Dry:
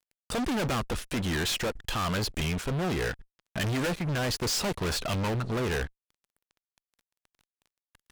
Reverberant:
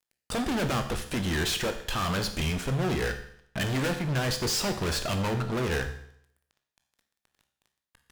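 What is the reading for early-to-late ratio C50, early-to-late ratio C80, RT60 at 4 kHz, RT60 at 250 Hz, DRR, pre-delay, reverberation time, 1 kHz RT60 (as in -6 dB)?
10.0 dB, 12.5 dB, 0.65 s, 0.70 s, 6.5 dB, 18 ms, 0.65 s, 0.65 s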